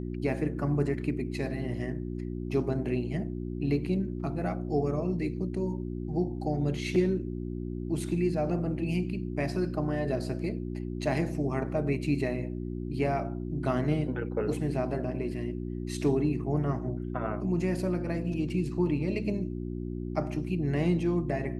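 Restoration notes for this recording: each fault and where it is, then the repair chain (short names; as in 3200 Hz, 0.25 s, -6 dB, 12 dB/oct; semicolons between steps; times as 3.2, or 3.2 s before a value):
hum 60 Hz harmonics 6 -35 dBFS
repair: de-hum 60 Hz, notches 6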